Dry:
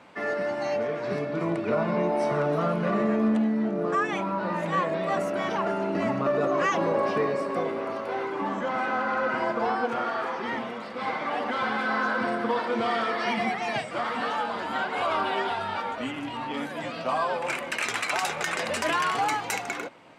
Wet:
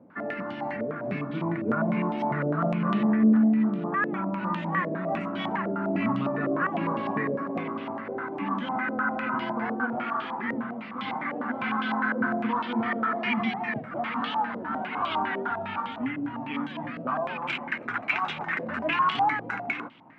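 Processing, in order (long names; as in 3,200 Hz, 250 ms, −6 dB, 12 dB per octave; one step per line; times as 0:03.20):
graphic EQ with 10 bands 125 Hz +5 dB, 250 Hz +10 dB, 500 Hz −10 dB
low-pass on a step sequencer 9.9 Hz 520–3,200 Hz
level −5 dB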